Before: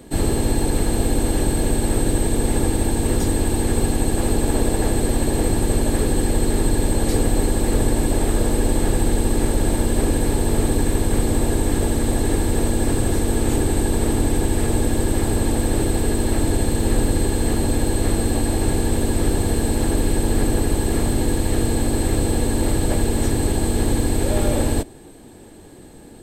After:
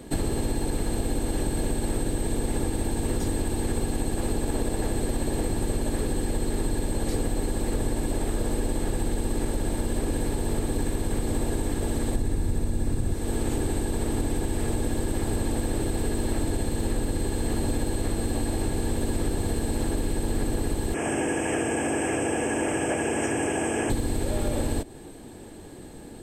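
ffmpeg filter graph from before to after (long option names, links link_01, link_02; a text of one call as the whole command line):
ffmpeg -i in.wav -filter_complex "[0:a]asettb=1/sr,asplit=3[link_01][link_02][link_03];[link_01]atrim=end=12.154[link_04];[link_02]atrim=start=12.15:end=13.14,asetpts=PTS-STARTPTS,afade=type=in:duration=0.004:curve=qsin,afade=type=out:start_time=0.986:duration=0.004:curve=qsin,bass=frequency=250:gain=9,treble=frequency=4000:gain=1,bandreject=frequency=3100:width=19[link_05];[link_03]atrim=start=13.136[link_06];[link_04][link_05]acrossfade=duration=0.004:curve1=hsin:curve2=qsin[link_07];[link_07][link_06]acrossfade=duration=0.004:curve1=qsin:curve2=hsin,asettb=1/sr,asplit=3[link_08][link_09][link_10];[link_08]atrim=end=20.944[link_11];[link_09]atrim=start=20.94:end=23.9,asetpts=PTS-STARTPTS,afade=type=in:duration=0.004:curve=qsin,afade=type=out:start_time=2.956:duration=0.004:curve=qsin,asuperstop=centerf=4100:order=8:qfactor=2,highpass=200,equalizer=frequency=210:width_type=q:width=4:gain=-8,equalizer=frequency=700:width_type=q:width=4:gain=5,equalizer=frequency=1600:width_type=q:width=4:gain=6,equalizer=frequency=2500:width_type=q:width=4:gain=8,lowpass=frequency=9300:width=0.5412,lowpass=frequency=9300:width=1.3066[link_12];[link_10]atrim=start=23.896[link_13];[link_11][link_12]acrossfade=duration=0.004:curve1=hsin:curve2=qsin[link_14];[link_14][link_13]acrossfade=duration=0.004:curve1=qsin:curve2=hsin,highshelf=frequency=11000:gain=-3.5,acompressor=threshold=-22dB:ratio=6" out.wav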